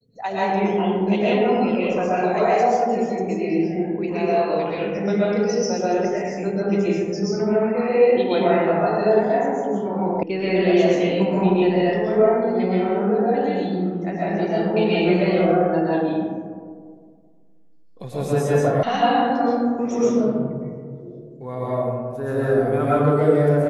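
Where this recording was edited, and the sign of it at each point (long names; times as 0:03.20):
0:10.23: cut off before it has died away
0:18.83: cut off before it has died away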